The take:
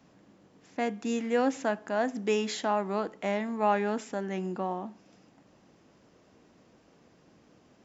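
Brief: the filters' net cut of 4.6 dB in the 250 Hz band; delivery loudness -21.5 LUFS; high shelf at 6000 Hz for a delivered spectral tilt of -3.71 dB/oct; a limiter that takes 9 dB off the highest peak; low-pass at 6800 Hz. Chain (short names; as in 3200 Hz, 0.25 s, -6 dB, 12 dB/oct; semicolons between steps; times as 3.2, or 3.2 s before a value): LPF 6800 Hz; bell 250 Hz -5.5 dB; high shelf 6000 Hz -7 dB; gain +14.5 dB; limiter -10 dBFS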